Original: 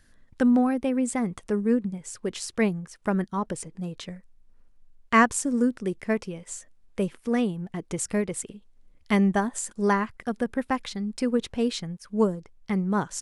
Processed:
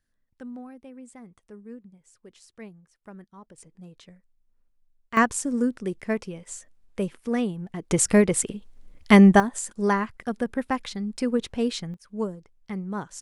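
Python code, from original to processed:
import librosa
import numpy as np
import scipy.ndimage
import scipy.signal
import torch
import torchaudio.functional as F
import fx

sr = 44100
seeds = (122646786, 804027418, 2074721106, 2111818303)

y = fx.gain(x, sr, db=fx.steps((0.0, -19.0), (3.58, -12.0), (5.17, -1.0), (7.91, 8.5), (9.4, 0.0), (11.94, -6.5)))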